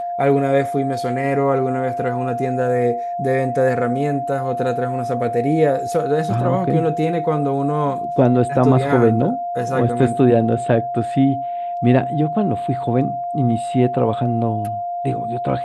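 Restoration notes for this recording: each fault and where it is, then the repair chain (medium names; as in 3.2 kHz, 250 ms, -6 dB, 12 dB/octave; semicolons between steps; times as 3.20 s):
whine 700 Hz -22 dBFS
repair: band-stop 700 Hz, Q 30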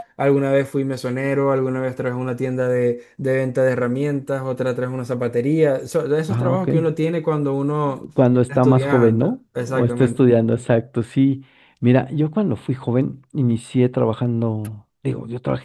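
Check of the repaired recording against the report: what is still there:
nothing left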